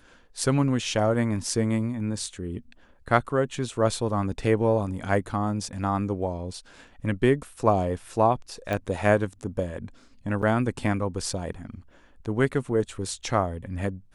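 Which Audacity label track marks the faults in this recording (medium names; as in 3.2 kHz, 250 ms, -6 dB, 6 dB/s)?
8.730000	8.730000	pop -15 dBFS
10.420000	10.430000	dropout 7 ms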